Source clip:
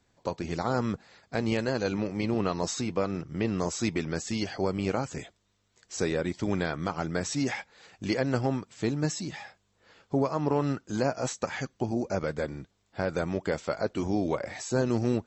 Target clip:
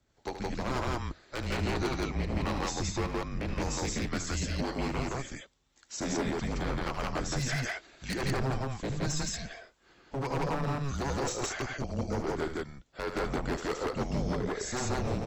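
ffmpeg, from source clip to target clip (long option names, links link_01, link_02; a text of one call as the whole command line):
ffmpeg -i in.wav -filter_complex "[0:a]lowshelf=frequency=92:gain=-8,afreqshift=-140,acrossover=split=540[link_01][link_02];[link_01]aeval=exprs='val(0)*(1-0.5/2+0.5/2*cos(2*PI*1.8*n/s))':channel_layout=same[link_03];[link_02]aeval=exprs='val(0)*(1-0.5/2-0.5/2*cos(2*PI*1.8*n/s))':channel_layout=same[link_04];[link_03][link_04]amix=inputs=2:normalize=0,aeval=exprs='0.0447*(abs(mod(val(0)/0.0447+3,4)-2)-1)':channel_layout=same,aecho=1:1:75.8|169.1:0.355|1" out.wav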